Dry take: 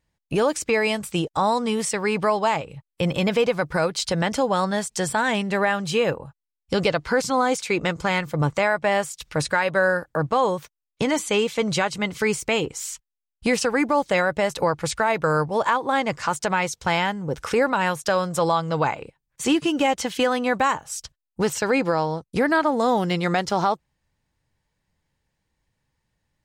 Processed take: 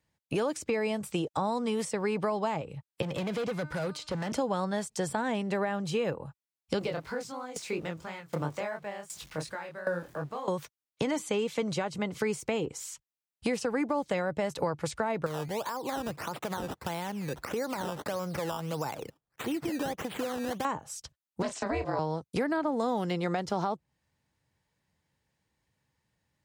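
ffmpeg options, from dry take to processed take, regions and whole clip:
-filter_complex "[0:a]asettb=1/sr,asplit=3[s0][s1][s2];[s0]atrim=end=3.024[s3];[s1]atrim=start=3.02:end=4.32,asetpts=PTS-STARTPTS,afade=t=in:d=0.004:c=qsin,afade=t=out:st=1.296:d=0.004:c=qsin,bandreject=f=303.9:t=h:w=4,bandreject=f=607.8:t=h:w=4,bandreject=f=911.7:t=h:w=4,bandreject=f=1215.6:t=h:w=4,bandreject=f=1519.5:t=h:w=4,bandreject=f=1823.4:t=h:w=4,bandreject=f=2127.3:t=h:w=4,bandreject=f=2431.2:t=h:w=4,bandreject=f=2735.1:t=h:w=4,bandreject=f=3039:t=h:w=4,bandreject=f=3342.9:t=h:w=4,bandreject=f=3646.8:t=h:w=4,bandreject=f=3950.7:t=h:w=4,bandreject=f=4254.6:t=h:w=4,bandreject=f=4558.5:t=h:w=4,bandreject=f=4862.4:t=h:w=4,bandreject=f=5166.3:t=h:w=4,bandreject=f=5470.2:t=h:w=4,bandreject=f=5774.1:t=h:w=4,bandreject=f=6078:t=h:w=4,bandreject=f=6381.9:t=h:w=4,bandreject=f=6685.8:t=h:w=4,bandreject=f=6989.7:t=h:w=4,bandreject=f=7293.6:t=h:w=4,bandreject=f=7597.5:t=h:w=4,bandreject=f=7901.4:t=h:w=4,bandreject=f=8205.3:t=h:w=4,bandreject=f=8509.2:t=h:w=4,bandreject=f=8813.1:t=h:w=4,acrossover=split=350|3000[s4][s5][s6];[s4]acompressor=threshold=0.0631:ratio=4[s7];[s5]acompressor=threshold=0.0501:ratio=4[s8];[s6]acompressor=threshold=0.00891:ratio=4[s9];[s7][s8][s9]amix=inputs=3:normalize=0,asoftclip=type=hard:threshold=0.0531[s10];[s2]atrim=start=4.316[s11];[s3][s10]acrossfade=d=0.004:c1=hsin:c2=qsin[s12];[s12][s11]acrossfade=d=0.004:c1=qsin:c2=hsin,asettb=1/sr,asplit=3[s13][s14][s15];[s13]atrim=end=6.794[s16];[s14]atrim=start=6.79:end=10.48,asetpts=PTS-STARTPTS,afade=t=in:d=0.004:c=qsin,afade=t=out:st=3.686:d=0.004:c=qsin,aeval=exprs='val(0)+0.5*0.0141*sgn(val(0))':c=same,flanger=delay=19.5:depth=6.1:speed=2.9,aeval=exprs='val(0)*pow(10,-19*if(lt(mod(1.3*n/s,1),2*abs(1.3)/1000),1-mod(1.3*n/s,1)/(2*abs(1.3)/1000),(mod(1.3*n/s,1)-2*abs(1.3)/1000)/(1-2*abs(1.3)/1000))/20)':c=same[s17];[s15]atrim=start=10.476[s18];[s16][s17]acrossfade=d=0.004:c1=hsin:c2=qsin[s19];[s19][s18]acrossfade=d=0.004:c1=qsin:c2=hsin,asettb=1/sr,asplit=3[s20][s21][s22];[s20]atrim=end=15.264[s23];[s21]atrim=start=15.26:end=20.65,asetpts=PTS-STARTPTS,afade=t=in:d=0.004:c=qsin,afade=t=out:st=5.386:d=0.004:c=qsin,acompressor=threshold=0.0316:ratio=2.5:attack=3.2:release=140:knee=1:detection=peak,acrusher=samples=14:mix=1:aa=0.000001:lfo=1:lforange=14:lforate=1.6[s24];[s22]atrim=start=20.646[s25];[s23][s24]acrossfade=d=0.004:c1=hsin:c2=qsin[s26];[s26][s25]acrossfade=d=0.004:c1=qsin:c2=hsin,asettb=1/sr,asplit=3[s27][s28][s29];[s27]atrim=end=21.424[s30];[s28]atrim=start=21.42:end=21.99,asetpts=PTS-STARTPTS,afade=t=in:d=0.004:c=qsin,afade=t=out:st=0.566:d=0.004:c=qsin,highpass=f=260:w=0.5412,highpass=f=260:w=1.3066,equalizer=f=470:t=q:w=4:g=-6,equalizer=f=790:t=q:w=4:g=6,equalizer=f=1200:t=q:w=4:g=-7,equalizer=f=2800:t=q:w=4:g=-3,equalizer=f=5900:t=q:w=4:g=-3,lowpass=f=8100:w=0.5412,lowpass=f=8100:w=1.3066,asplit=2[s31][s32];[s32]adelay=30,volume=0.355[s33];[s31][s33]amix=inputs=2:normalize=0,atrim=end_sample=25137,aeval=exprs='val(0)*sin(2*PI*190*n/s)':c=same[s34];[s29]atrim=start=21.986[s35];[s30][s34]acrossfade=d=0.004:c1=hsin:c2=qsin[s36];[s36][s35]acrossfade=d=0.004:c1=qsin:c2=hsin,highpass=77,acrossover=split=310|900[s37][s38][s39];[s37]acompressor=threshold=0.0224:ratio=4[s40];[s38]acompressor=threshold=0.0316:ratio=4[s41];[s39]acompressor=threshold=0.0126:ratio=4[s42];[s40][s41][s42]amix=inputs=3:normalize=0,volume=0.841"

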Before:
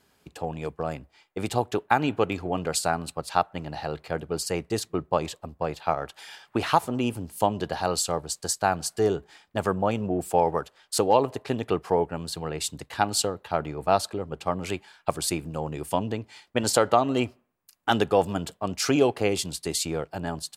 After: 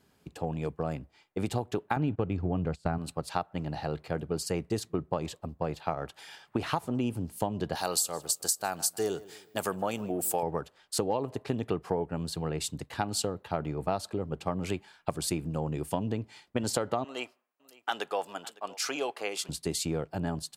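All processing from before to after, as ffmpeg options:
-filter_complex "[0:a]asettb=1/sr,asplit=3[s0][s1][s2];[s0]atrim=end=1.964[s3];[s1]atrim=start=1.96:end=2.98,asetpts=PTS-STARTPTS,afade=t=in:d=0.004:c=qsin,afade=t=out:st=1.016:d=0.004:c=qsin,deesser=0.5,aemphasis=mode=reproduction:type=bsi,agate=range=0.158:threshold=0.0282:ratio=16:release=100:detection=peak[s4];[s2]atrim=start=2.976[s5];[s3][s4]acrossfade=d=0.004:c1=hsin:c2=qsin[s6];[s6][s5]acrossfade=d=0.004:c1=qsin:c2=hsin,asettb=1/sr,asplit=3[s7][s8][s9];[s7]atrim=end=7.754[s10];[s8]atrim=start=7.75:end=10.43,asetpts=PTS-STARTPTS,afade=t=in:d=0.004:c=qsin,afade=t=out:st=2.676:d=0.004:c=qsin,aemphasis=mode=production:type=riaa,asplit=2[s11][s12];[s12]adelay=154,lowpass=f=3700:p=1,volume=0.0891,asplit=2[s13][s14];[s14]adelay=154,lowpass=f=3700:p=1,volume=0.41,asplit=2[s15][s16];[s16]adelay=154,lowpass=f=3700:p=1,volume=0.41[s17];[s11][s13][s15][s17]amix=inputs=4:normalize=0,atrim=end_sample=118188[s18];[s9]atrim=start=10.426[s19];[s10][s18]acrossfade=d=0.004:c1=hsin:c2=qsin[s20];[s20][s19]acrossfade=d=0.004:c1=qsin:c2=hsin,asettb=1/sr,asplit=3[s21][s22][s23];[s21]atrim=end=17.044[s24];[s22]atrim=start=17.04:end=19.49,asetpts=PTS-STARTPTS,afade=t=in:d=0.004:c=qsin,afade=t=out:st=2.446:d=0.004:c=qsin,highpass=780,aecho=1:1:557:0.075,atrim=end_sample=108045[s25];[s23]atrim=start=19.486[s26];[s24][s25]acrossfade=d=0.004:c1=hsin:c2=qsin[s27];[s27][s26]acrossfade=d=0.004:c1=qsin:c2=hsin,equalizer=f=150:w=0.41:g=7,acompressor=threshold=0.0891:ratio=6,volume=0.596"

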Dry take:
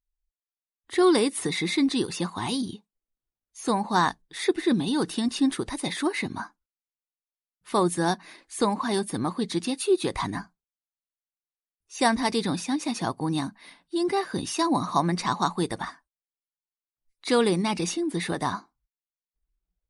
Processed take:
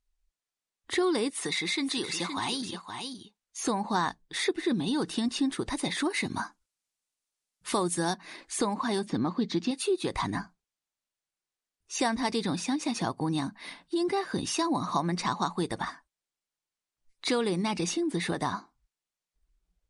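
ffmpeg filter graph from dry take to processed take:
-filter_complex "[0:a]asettb=1/sr,asplit=3[s0][s1][s2];[s0]atrim=end=1.304[s3];[s1]atrim=start=1.3:end=3.61,asetpts=PTS-STARTPTS,afade=t=in:d=0.004:c=qsin,afade=t=out:st=2.306:d=0.004:c=qsin,lowshelf=f=480:g=-11.5,aecho=1:1:518:0.266,atrim=end_sample=101871[s4];[s2]atrim=start=3.606[s5];[s3][s4]acrossfade=d=0.004:c1=hsin:c2=qsin[s6];[s6][s5]acrossfade=d=0.004:c1=qsin:c2=hsin,asettb=1/sr,asplit=3[s7][s8][s9];[s7]atrim=end=6.104[s10];[s8]atrim=start=6.1:end=8.14,asetpts=PTS-STARTPTS,afade=t=in:d=0.004:c=qsin,afade=t=out:st=2.036:d=0.004:c=qsin,aemphasis=mode=production:type=cd,acrusher=bits=8:mode=log:mix=0:aa=0.000001[s11];[s9]atrim=start=8.136[s12];[s10][s11]acrossfade=d=0.004:c1=hsin:c2=qsin[s13];[s13][s12]acrossfade=d=0.004:c1=qsin:c2=hsin,asettb=1/sr,asplit=3[s14][s15][s16];[s14]atrim=end=9.064[s17];[s15]atrim=start=9.06:end=9.71,asetpts=PTS-STARTPTS,afade=t=in:d=0.004:c=qsin,afade=t=out:st=0.646:d=0.004:c=qsin,lowpass=f=6200:w=0.5412,lowpass=f=6200:w=1.3066,equalizer=f=240:t=o:w=1.1:g=5[s18];[s16]atrim=start=9.706[s19];[s17][s18]acrossfade=d=0.004:c1=hsin:c2=qsin[s20];[s20][s19]acrossfade=d=0.004:c1=qsin:c2=hsin,lowpass=f=9600:w=0.5412,lowpass=f=9600:w=1.3066,acompressor=threshold=0.0141:ratio=2.5,volume=2.11"

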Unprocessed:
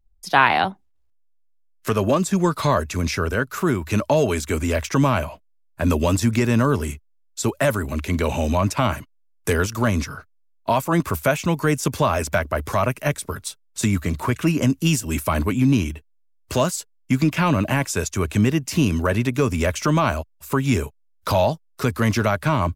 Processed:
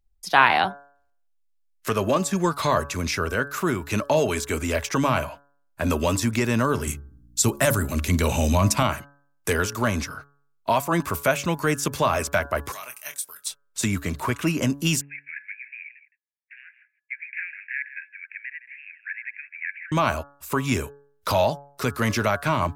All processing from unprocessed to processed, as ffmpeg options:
-filter_complex "[0:a]asettb=1/sr,asplit=3[s0][s1][s2];[s0]atrim=end=6.874[s3];[s1]atrim=start=6.87:end=8.83,asetpts=PTS-STARTPTS,afade=t=in:d=0.004:c=qsin,afade=t=out:st=1.956:d=0.004:c=qsin,bass=f=250:g=8,treble=f=4000:g=8,aeval=exprs='val(0)+0.00447*(sin(2*PI*60*n/s)+sin(2*PI*2*60*n/s)/2+sin(2*PI*3*60*n/s)/3+sin(2*PI*4*60*n/s)/4+sin(2*PI*5*60*n/s)/5)':c=same,bandreject=f=70.64:t=h:w=4,bandreject=f=141.28:t=h:w=4,bandreject=f=211.92:t=h:w=4,bandreject=f=282.56:t=h:w=4,bandreject=f=353.2:t=h:w=4,bandreject=f=423.84:t=h:w=4,bandreject=f=494.48:t=h:w=4,bandreject=f=565.12:t=h:w=4,bandreject=f=635.76:t=h:w=4[s4];[s2]atrim=start=8.826[s5];[s3][s4]acrossfade=d=0.004:c1=hsin:c2=qsin[s6];[s6][s5]acrossfade=d=0.004:c1=qsin:c2=hsin,asettb=1/sr,asplit=3[s7][s8][s9];[s7]atrim=end=12.724[s10];[s8]atrim=start=12.72:end=13.46,asetpts=PTS-STARTPTS,afade=t=in:d=0.004:c=qsin,afade=t=out:st=0.736:d=0.004:c=qsin,aderivative,asplit=2[s11][s12];[s12]adelay=25,volume=0.376[s13];[s11][s13]amix=inputs=2:normalize=0,atrim=end_sample=32634[s14];[s9]atrim=start=13.456[s15];[s10][s14]acrossfade=d=0.004:c1=hsin:c2=qsin[s16];[s16][s15]acrossfade=d=0.004:c1=qsin:c2=hsin,asettb=1/sr,asplit=3[s17][s18][s19];[s17]atrim=end=15.014[s20];[s18]atrim=start=15.01:end=19.92,asetpts=PTS-STARTPTS,afade=t=in:d=0.004:c=qsin,afade=t=out:st=4.906:d=0.004:c=qsin,asuperpass=centerf=2000:order=12:qfactor=2.3,aecho=1:1:164:0.188,atrim=end_sample=216531[s21];[s19]atrim=start=19.916[s22];[s20][s21]acrossfade=d=0.004:c1=hsin:c2=qsin[s23];[s23][s22]acrossfade=d=0.004:c1=qsin:c2=hsin,lowshelf=f=390:g=-6,bandreject=f=141.7:t=h:w=4,bandreject=f=283.4:t=h:w=4,bandreject=f=425.1:t=h:w=4,bandreject=f=566.8:t=h:w=4,bandreject=f=708.5:t=h:w=4,bandreject=f=850.2:t=h:w=4,bandreject=f=991.9:t=h:w=4,bandreject=f=1133.6:t=h:w=4,bandreject=f=1275.3:t=h:w=4,bandreject=f=1417:t=h:w=4,bandreject=f=1558.7:t=h:w=4,bandreject=f=1700.4:t=h:w=4"

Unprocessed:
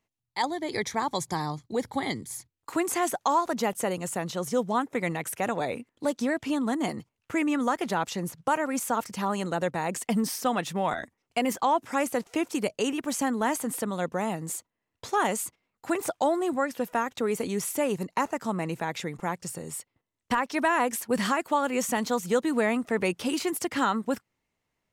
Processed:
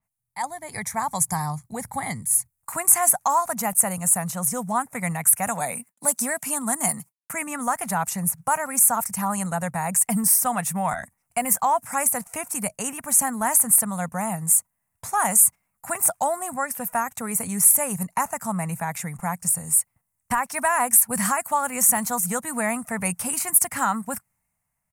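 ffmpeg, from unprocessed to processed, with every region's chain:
-filter_complex "[0:a]asettb=1/sr,asplit=3[s0][s1][s2];[s0]atrim=end=5.474[s3];[s1]atrim=start=5.47:end=7.33,asetpts=PTS-STARTPTS,afade=t=in:d=0.004:c=qsin,afade=t=out:st=1.856:d=0.004:c=qsin,highshelf=f=4300:g=9,agate=range=0.0224:threshold=0.001:ratio=3:release=100:detection=peak,highpass=f=150:w=0.5412,highpass=f=150:w=1.3066[s4];[s2]atrim=start=7.326[s5];[s3][s4]acrossfade=d=0.004:c1=hsin:c2=qsin[s6];[s6][s5]acrossfade=d=0.004:c1=qsin:c2=hsin,firequalizer=gain_entry='entry(180,0);entry(340,-22);entry(700,-2);entry(2300,-5);entry(3300,-18);entry(9200,11);entry(15000,8)':delay=0.05:min_phase=1,dynaudnorm=f=220:g=7:m=1.68,adynamicequalizer=threshold=0.0178:dfrequency=3400:dqfactor=0.7:tfrequency=3400:tqfactor=0.7:attack=5:release=100:ratio=0.375:range=2:mode=boostabove:tftype=highshelf,volume=1.19"

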